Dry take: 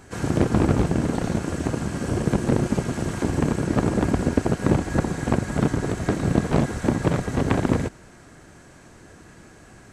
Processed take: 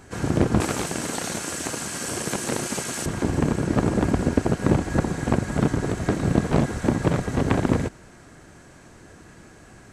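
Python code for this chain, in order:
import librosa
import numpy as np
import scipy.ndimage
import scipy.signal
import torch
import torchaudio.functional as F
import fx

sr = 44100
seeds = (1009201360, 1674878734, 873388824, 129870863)

y = fx.tilt_eq(x, sr, slope=4.0, at=(0.6, 3.06))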